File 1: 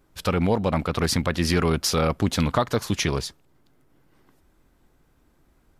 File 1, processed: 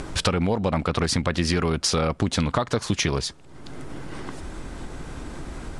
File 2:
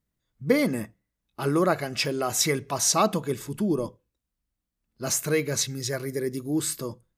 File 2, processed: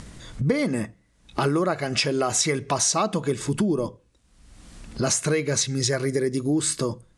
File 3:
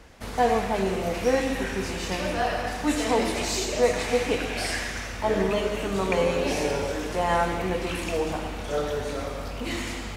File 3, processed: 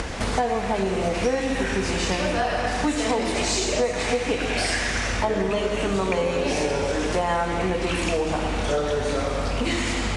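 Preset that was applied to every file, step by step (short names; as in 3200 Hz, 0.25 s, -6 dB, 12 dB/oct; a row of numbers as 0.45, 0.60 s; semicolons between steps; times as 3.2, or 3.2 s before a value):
upward compressor, threshold -33 dBFS; steep low-pass 10000 Hz 48 dB/oct; compressor 6:1, threshold -33 dBFS; match loudness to -24 LUFS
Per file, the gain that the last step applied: +12.5, +12.5, +12.0 dB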